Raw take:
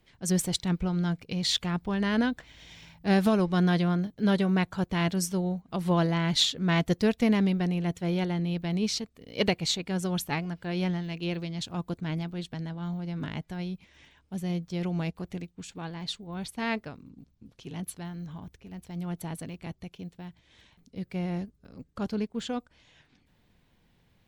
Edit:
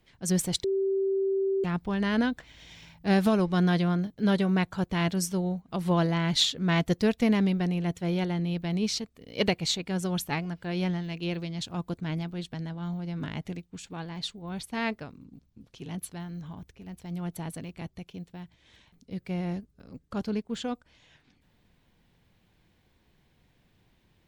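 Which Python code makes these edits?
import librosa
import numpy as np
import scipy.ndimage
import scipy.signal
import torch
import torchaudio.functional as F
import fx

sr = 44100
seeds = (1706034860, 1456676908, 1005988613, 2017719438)

y = fx.edit(x, sr, fx.bleep(start_s=0.64, length_s=1.0, hz=388.0, db=-23.5),
    fx.cut(start_s=13.45, length_s=1.85), tone=tone)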